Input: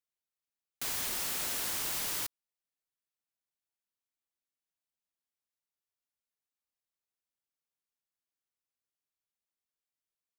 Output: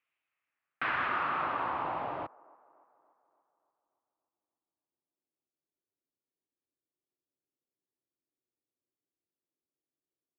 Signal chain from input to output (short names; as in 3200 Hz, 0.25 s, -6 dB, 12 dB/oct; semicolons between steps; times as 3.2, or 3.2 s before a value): low-pass sweep 2400 Hz -> 380 Hz, 0.22–3.29; speaker cabinet 120–3600 Hz, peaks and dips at 200 Hz -9 dB, 440 Hz -6 dB, 1200 Hz +5 dB, 2600 Hz +5 dB; band-limited delay 0.289 s, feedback 54%, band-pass 620 Hz, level -23.5 dB; gain +7.5 dB